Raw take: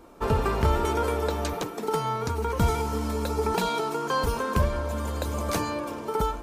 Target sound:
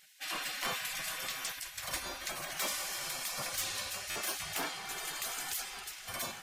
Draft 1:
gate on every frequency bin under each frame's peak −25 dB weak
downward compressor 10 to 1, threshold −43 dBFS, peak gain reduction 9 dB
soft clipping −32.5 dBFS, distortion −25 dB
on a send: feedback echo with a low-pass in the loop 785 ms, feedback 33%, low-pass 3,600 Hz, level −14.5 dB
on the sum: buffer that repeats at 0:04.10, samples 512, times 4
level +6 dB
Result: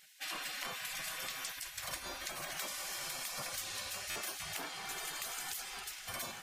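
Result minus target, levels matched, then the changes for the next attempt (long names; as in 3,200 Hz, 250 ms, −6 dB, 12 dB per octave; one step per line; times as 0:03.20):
downward compressor: peak gain reduction +9 dB
remove: downward compressor 10 to 1, threshold −43 dBFS, peak gain reduction 9 dB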